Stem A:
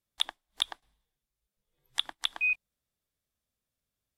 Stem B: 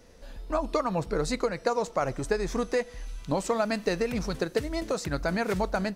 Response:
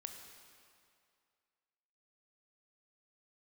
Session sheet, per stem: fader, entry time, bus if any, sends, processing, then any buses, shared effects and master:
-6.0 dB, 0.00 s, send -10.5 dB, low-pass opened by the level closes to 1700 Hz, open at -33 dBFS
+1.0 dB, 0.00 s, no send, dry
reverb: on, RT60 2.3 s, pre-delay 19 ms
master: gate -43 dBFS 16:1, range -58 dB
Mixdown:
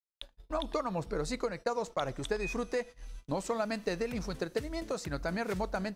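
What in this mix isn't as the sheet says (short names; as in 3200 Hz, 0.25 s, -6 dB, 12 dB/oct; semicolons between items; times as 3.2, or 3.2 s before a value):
stem A -6.0 dB -> -15.0 dB; stem B +1.0 dB -> -6.0 dB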